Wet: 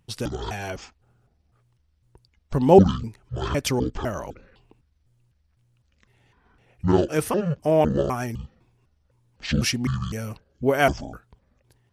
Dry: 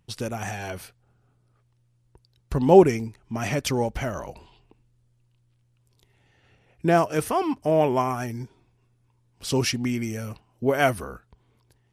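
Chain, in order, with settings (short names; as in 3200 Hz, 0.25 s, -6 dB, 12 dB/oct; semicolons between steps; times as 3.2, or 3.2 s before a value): trilling pitch shifter -10.5 st, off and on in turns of 0.253 s; gain +1.5 dB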